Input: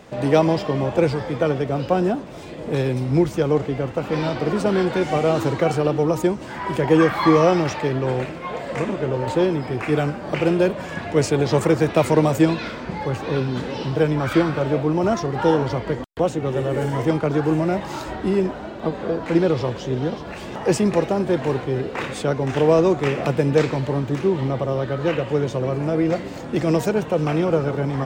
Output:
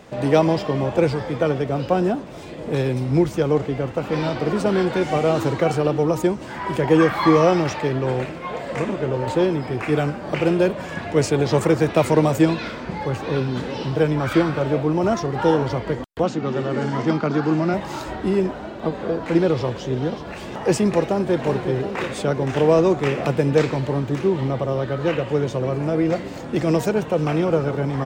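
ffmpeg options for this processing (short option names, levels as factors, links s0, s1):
-filter_complex "[0:a]asettb=1/sr,asplit=3[s0][s1][s2];[s0]atrim=end=16.234[s3];[s1]atrim=start=16.23:end=17.74,asetpts=PTS-STARTPTS,afade=t=in:d=0.004:c=qsin,afade=t=out:st=1.506:d=0.004:c=qsin,highpass=140,equalizer=f=220:t=q:w=4:g=10,equalizer=f=500:t=q:w=4:g=-5,equalizer=f=1300:t=q:w=4:g=5,equalizer=f=4600:t=q:w=4:g=6,lowpass=f=6900:w=0.5412,lowpass=f=6900:w=1.3066[s4];[s2]atrim=start=17.736[s5];[s3][s4]acrossfade=d=0.004:c1=hsin:c2=qsin[s6];[s6][s5]acrossfade=d=0.004:c1=qsin:c2=hsin,asplit=2[s7][s8];[s8]afade=t=in:st=21.03:d=0.01,afade=t=out:st=21.43:d=0.01,aecho=0:1:360|720|1080|1440|1800|2160|2520|2880|3240|3600|3960:0.398107|0.278675|0.195073|0.136551|0.0955855|0.0669099|0.0468369|0.0327858|0.0229501|0.0160651|0.0112455[s9];[s7][s9]amix=inputs=2:normalize=0"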